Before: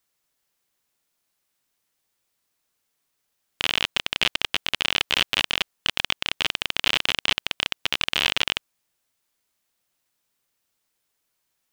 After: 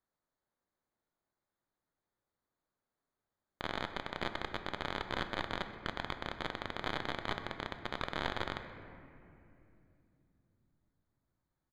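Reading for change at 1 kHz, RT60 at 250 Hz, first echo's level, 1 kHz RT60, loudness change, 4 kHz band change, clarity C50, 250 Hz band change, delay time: -5.5 dB, 4.6 s, -19.0 dB, 2.4 s, -16.0 dB, -21.5 dB, 8.5 dB, -3.0 dB, 127 ms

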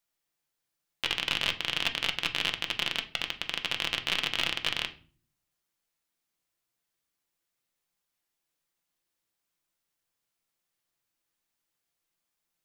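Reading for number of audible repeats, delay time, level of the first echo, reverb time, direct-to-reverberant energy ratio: no echo, no echo, no echo, 0.40 s, 5.0 dB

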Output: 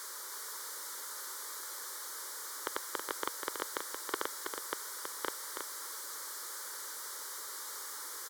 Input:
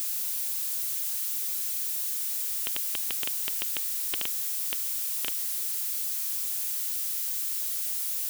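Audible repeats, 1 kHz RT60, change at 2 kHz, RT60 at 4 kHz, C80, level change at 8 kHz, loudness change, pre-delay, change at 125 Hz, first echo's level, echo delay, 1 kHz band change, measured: 1, no reverb, +0.5 dB, no reverb, no reverb, -8.5 dB, -12.5 dB, no reverb, no reading, -6.0 dB, 324 ms, +10.0 dB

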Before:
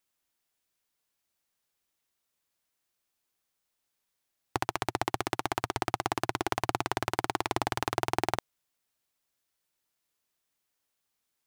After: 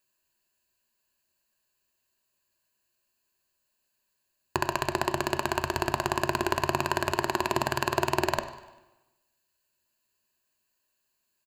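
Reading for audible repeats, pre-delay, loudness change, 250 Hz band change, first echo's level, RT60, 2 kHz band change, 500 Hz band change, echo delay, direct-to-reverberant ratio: 3, 5 ms, +3.5 dB, +4.0 dB, -19.5 dB, 1.1 s, +4.5 dB, +5.0 dB, 99 ms, 9.5 dB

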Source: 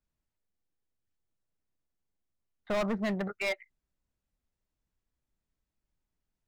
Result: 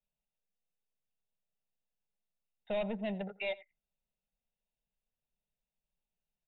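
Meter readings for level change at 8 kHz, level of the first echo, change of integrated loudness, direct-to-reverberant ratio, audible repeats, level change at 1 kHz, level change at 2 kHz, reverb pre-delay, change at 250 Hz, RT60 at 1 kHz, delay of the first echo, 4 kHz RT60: under -25 dB, -21.0 dB, -5.0 dB, no reverb, 1, -7.5 dB, -7.5 dB, no reverb, -6.5 dB, no reverb, 86 ms, no reverb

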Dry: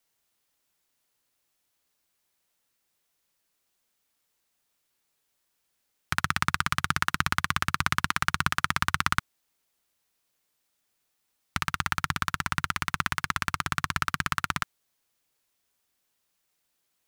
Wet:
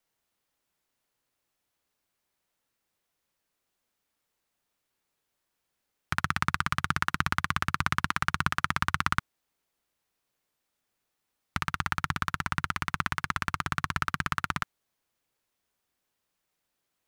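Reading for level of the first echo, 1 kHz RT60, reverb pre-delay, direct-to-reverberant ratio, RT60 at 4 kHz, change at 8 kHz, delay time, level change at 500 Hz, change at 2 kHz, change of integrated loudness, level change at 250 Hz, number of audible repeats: no echo, no reverb, no reverb, no reverb, no reverb, -6.0 dB, no echo, -0.5 dB, -2.0 dB, -2.0 dB, 0.0 dB, no echo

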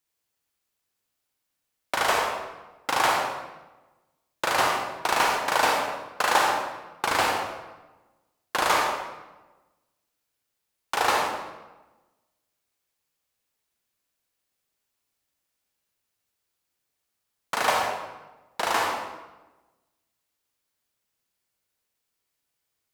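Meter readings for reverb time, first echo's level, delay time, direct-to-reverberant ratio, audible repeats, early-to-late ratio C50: 1.1 s, no echo, no echo, 0.0 dB, no echo, 1.0 dB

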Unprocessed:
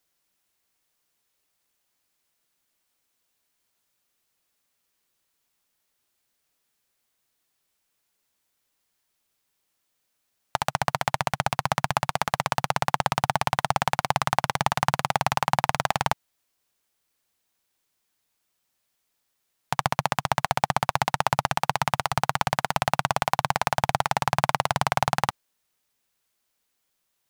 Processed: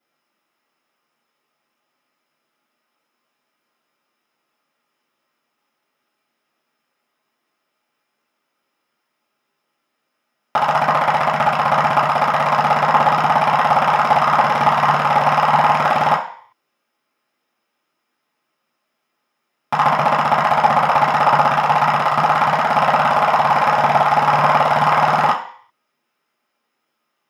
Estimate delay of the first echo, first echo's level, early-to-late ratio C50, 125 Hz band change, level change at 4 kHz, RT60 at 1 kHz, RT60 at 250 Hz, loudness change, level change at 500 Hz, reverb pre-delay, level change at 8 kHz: no echo, no echo, 7.0 dB, +4.0 dB, +3.0 dB, 0.55 s, 0.35 s, +10.5 dB, +11.0 dB, 3 ms, no reading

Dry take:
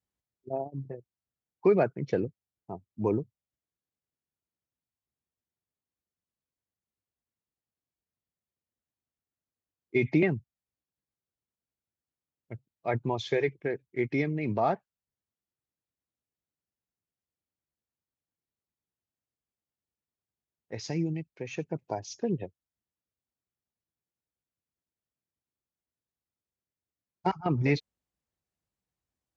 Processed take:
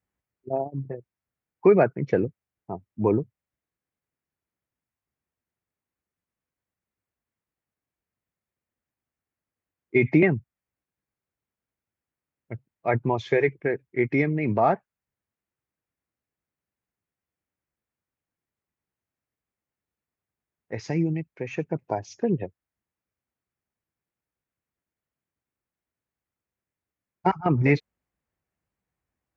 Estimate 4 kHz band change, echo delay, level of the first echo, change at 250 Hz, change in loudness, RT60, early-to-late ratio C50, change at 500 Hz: -2.5 dB, no echo, no echo, +5.5 dB, +5.5 dB, no reverb, no reverb, +5.5 dB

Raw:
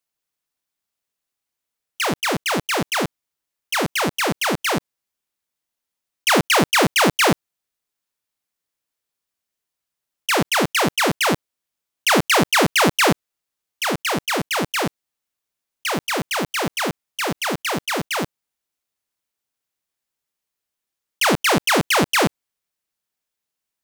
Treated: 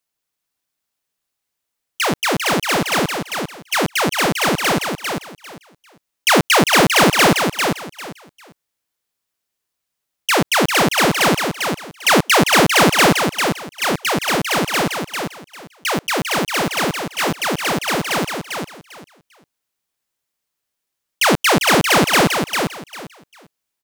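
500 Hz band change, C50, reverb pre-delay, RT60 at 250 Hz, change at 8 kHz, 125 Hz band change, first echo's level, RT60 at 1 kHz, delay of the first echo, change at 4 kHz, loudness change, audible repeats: +4.0 dB, no reverb, no reverb, no reverb, +4.0 dB, +4.0 dB, -5.5 dB, no reverb, 398 ms, +4.0 dB, +3.5 dB, 3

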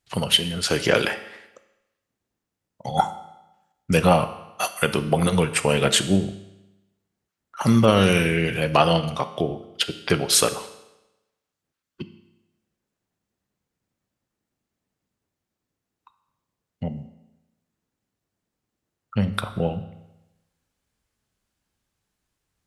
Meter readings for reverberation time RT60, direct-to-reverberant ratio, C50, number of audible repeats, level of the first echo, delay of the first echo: 0.95 s, 10.0 dB, 13.0 dB, no echo, no echo, no echo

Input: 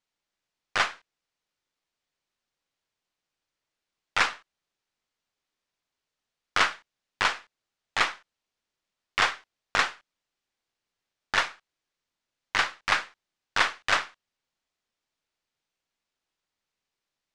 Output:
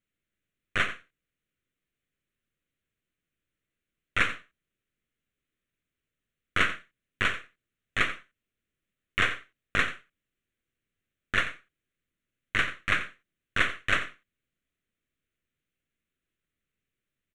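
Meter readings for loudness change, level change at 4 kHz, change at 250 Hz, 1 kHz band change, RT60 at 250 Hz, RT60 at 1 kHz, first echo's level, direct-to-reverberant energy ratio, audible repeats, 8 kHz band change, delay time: -2.0 dB, -4.5 dB, +5.5 dB, -6.0 dB, no reverb, no reverb, -13.5 dB, no reverb, 1, -7.5 dB, 88 ms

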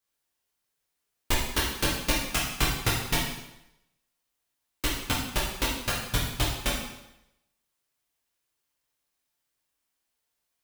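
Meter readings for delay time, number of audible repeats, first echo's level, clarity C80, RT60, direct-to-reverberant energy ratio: no echo, no echo, no echo, 5.5 dB, 0.85 s, -5.5 dB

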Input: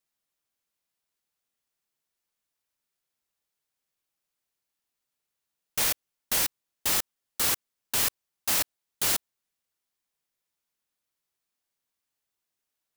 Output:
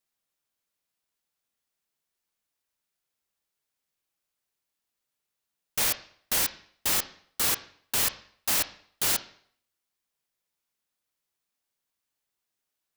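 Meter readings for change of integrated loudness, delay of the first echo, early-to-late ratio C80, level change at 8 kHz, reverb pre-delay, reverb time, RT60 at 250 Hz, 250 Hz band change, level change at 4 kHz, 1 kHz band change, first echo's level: 0.0 dB, no echo, 18.0 dB, 0.0 dB, 26 ms, 0.60 s, 0.50 s, +0.5 dB, +0.5 dB, +0.5 dB, no echo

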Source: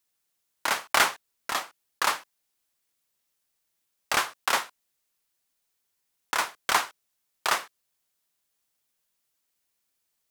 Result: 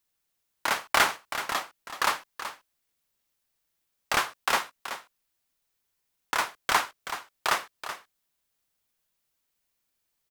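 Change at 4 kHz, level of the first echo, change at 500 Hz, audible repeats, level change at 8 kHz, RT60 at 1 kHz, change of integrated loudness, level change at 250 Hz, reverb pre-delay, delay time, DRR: -1.0 dB, -11.0 dB, +0.5 dB, 1, -2.5 dB, no reverb, -1.5 dB, +1.0 dB, no reverb, 378 ms, no reverb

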